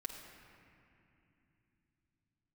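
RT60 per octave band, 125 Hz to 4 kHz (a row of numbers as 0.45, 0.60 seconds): 5.2, 4.5, 3.0, 2.7, 2.9, 1.8 seconds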